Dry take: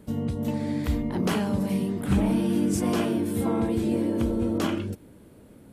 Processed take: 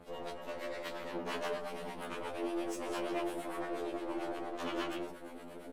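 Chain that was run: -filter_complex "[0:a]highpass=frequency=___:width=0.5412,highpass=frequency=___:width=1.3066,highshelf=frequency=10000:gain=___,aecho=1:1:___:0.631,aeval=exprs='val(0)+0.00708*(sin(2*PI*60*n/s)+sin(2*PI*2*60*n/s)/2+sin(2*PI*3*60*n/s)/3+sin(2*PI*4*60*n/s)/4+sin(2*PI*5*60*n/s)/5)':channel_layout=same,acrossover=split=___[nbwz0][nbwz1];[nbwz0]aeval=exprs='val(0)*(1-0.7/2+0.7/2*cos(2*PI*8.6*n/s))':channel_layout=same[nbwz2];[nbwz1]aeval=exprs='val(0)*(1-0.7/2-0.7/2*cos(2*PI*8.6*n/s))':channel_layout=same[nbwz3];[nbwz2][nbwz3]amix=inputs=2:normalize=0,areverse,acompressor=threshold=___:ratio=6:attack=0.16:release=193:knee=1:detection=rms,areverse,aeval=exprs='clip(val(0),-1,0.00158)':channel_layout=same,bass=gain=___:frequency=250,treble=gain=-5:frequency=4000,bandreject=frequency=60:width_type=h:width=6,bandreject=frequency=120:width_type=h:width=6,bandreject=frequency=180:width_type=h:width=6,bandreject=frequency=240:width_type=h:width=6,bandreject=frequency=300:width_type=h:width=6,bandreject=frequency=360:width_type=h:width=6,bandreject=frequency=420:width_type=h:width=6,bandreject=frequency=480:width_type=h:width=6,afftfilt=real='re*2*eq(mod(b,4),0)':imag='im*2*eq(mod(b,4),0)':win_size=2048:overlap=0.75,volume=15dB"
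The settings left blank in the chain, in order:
180, 180, -9.5, 161, 580, -38dB, -15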